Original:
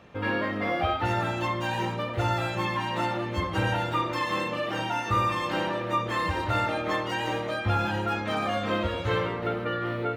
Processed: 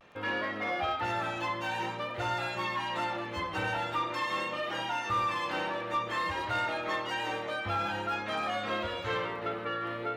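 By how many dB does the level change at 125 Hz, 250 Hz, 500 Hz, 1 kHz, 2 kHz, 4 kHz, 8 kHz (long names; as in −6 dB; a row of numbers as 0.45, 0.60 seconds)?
−12.5, −9.0, −6.0, −3.5, −2.5, −2.5, −4.0 decibels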